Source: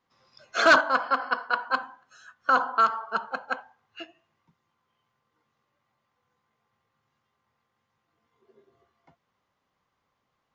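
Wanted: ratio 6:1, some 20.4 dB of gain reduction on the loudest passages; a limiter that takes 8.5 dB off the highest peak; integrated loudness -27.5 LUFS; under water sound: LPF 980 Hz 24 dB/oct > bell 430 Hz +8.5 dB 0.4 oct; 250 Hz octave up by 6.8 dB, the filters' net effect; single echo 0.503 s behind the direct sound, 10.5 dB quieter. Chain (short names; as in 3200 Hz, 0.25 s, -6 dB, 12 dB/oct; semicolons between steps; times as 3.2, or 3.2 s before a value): bell 250 Hz +7 dB; compressor 6:1, threshold -36 dBFS; limiter -29.5 dBFS; LPF 980 Hz 24 dB/oct; bell 430 Hz +8.5 dB 0.4 oct; echo 0.503 s -10.5 dB; gain +20 dB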